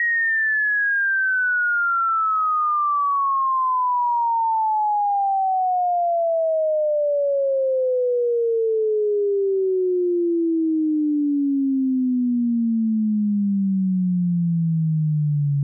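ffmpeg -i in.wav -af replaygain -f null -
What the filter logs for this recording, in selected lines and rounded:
track_gain = +5.3 dB
track_peak = 0.099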